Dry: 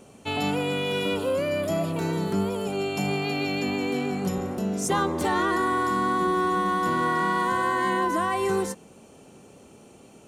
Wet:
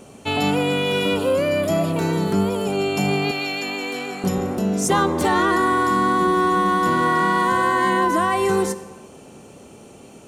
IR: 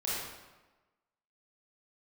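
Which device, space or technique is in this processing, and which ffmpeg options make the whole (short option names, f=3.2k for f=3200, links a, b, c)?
ducked reverb: -filter_complex "[0:a]asettb=1/sr,asplit=3[a][b][c];[a]atrim=end=3.314[d];[b]atrim=start=3.31:end=4.24,asetpts=PTS-STARTPTS,afade=t=in:d=0.004:c=qsin,afade=t=out:st=0.926:d=0.004:c=qsin,highpass=f=1k:p=1[e];[c]atrim=start=4.236[f];[d][e]acrossfade=d=0.004:c1=hsin:c2=qsin[g];[g][f]acrossfade=d=0.004:c1=qsin:c2=hsin,asplit=3[h][i][j];[1:a]atrim=start_sample=2205[k];[i][k]afir=irnorm=-1:irlink=0[l];[j]apad=whole_len=453013[m];[l][m]sidechaincompress=threshold=-32dB:ratio=8:attack=16:release=169,volume=-16.5dB[n];[h][n]amix=inputs=2:normalize=0,volume=5.5dB"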